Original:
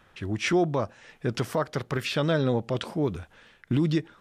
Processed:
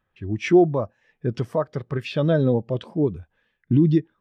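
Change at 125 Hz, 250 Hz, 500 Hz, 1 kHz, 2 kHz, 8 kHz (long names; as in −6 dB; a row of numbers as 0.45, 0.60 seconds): +5.5 dB, +6.5 dB, +5.5 dB, +1.0 dB, −2.0 dB, can't be measured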